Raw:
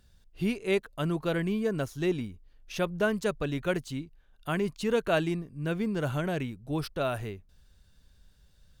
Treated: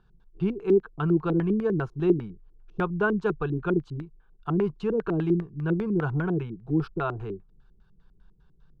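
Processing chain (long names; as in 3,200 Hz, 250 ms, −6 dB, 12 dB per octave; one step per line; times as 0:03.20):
phaser with its sweep stopped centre 390 Hz, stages 8
auto-filter low-pass square 5 Hz 320–1,800 Hz
level +4.5 dB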